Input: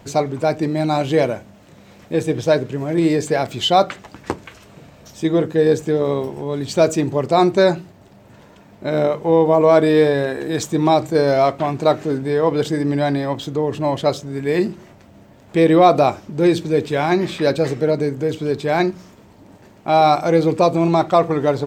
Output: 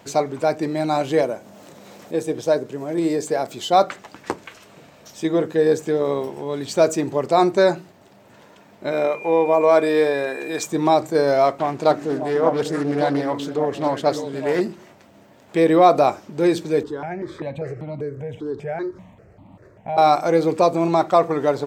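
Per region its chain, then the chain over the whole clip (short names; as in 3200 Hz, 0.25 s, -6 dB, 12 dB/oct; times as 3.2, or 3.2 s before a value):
1.21–3.73 HPF 160 Hz 6 dB/oct + bell 2300 Hz -7 dB 2 oct + upward compressor, threshold -30 dBFS
8.91–10.65 HPF 310 Hz 6 dB/oct + whine 2400 Hz -32 dBFS
11.58–14.61 delay with a stepping band-pass 0.297 s, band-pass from 230 Hz, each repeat 1.4 oct, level -3 dB + Doppler distortion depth 0.3 ms
16.83–19.98 compressor 2:1, threshold -28 dBFS + RIAA curve playback + step phaser 5.1 Hz 640–1600 Hz
whole clip: HPF 330 Hz 6 dB/oct; dynamic EQ 3100 Hz, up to -5 dB, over -37 dBFS, Q 1.2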